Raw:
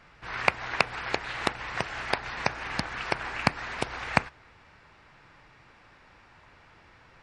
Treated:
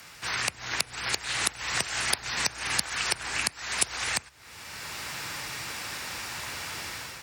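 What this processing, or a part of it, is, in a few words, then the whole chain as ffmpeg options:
FM broadcast chain: -filter_complex "[0:a]highpass=69,dynaudnorm=f=180:g=5:m=3.98,acrossover=split=81|370[s0][s1][s2];[s0]acompressor=threshold=0.00282:ratio=4[s3];[s1]acompressor=threshold=0.00631:ratio=4[s4];[s2]acompressor=threshold=0.0158:ratio=4[s5];[s3][s4][s5]amix=inputs=3:normalize=0,aemphasis=mode=production:type=75fm,alimiter=limit=0.141:level=0:latency=1:release=272,asoftclip=type=hard:threshold=0.1,lowpass=f=15000:w=0.5412,lowpass=f=15000:w=1.3066,aemphasis=mode=production:type=75fm,volume=1.58"

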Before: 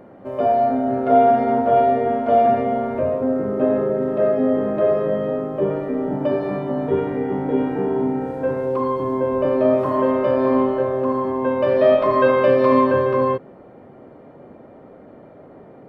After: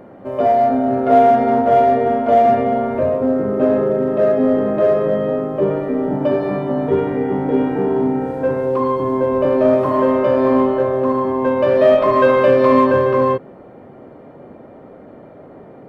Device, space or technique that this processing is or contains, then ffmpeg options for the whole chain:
parallel distortion: -filter_complex "[0:a]asplit=2[s0][s1];[s1]asoftclip=type=hard:threshold=0.158,volume=0.299[s2];[s0][s2]amix=inputs=2:normalize=0,volume=1.19"

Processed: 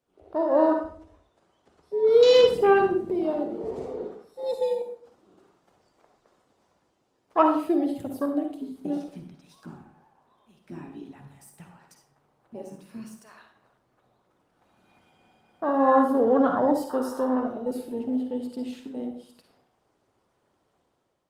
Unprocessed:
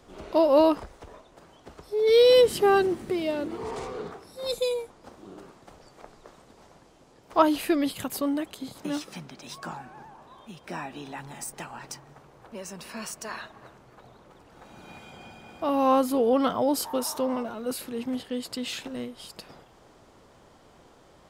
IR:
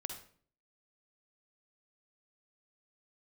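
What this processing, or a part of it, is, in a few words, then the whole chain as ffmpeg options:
far-field microphone of a smart speaker: -filter_complex "[0:a]afwtdn=0.0355,asplit=3[s0][s1][s2];[s0]afade=t=out:st=13.24:d=0.02[s3];[s1]equalizer=f=420:t=o:w=0.44:g=-2,afade=t=in:st=13.24:d=0.02,afade=t=out:st=15.27:d=0.02[s4];[s2]afade=t=in:st=15.27:d=0.02[s5];[s3][s4][s5]amix=inputs=3:normalize=0[s6];[1:a]atrim=start_sample=2205[s7];[s6][s7]afir=irnorm=-1:irlink=0,highpass=f=110:p=1,dynaudnorm=f=230:g=5:m=2.66,volume=0.631" -ar 48000 -c:a libopus -b:a 32k

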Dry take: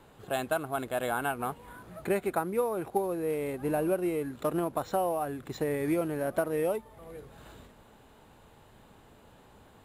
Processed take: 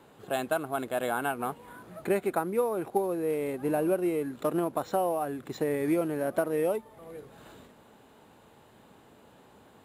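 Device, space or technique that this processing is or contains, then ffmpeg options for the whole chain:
filter by subtraction: -filter_complex "[0:a]asplit=2[s0][s1];[s1]lowpass=250,volume=-1[s2];[s0][s2]amix=inputs=2:normalize=0"

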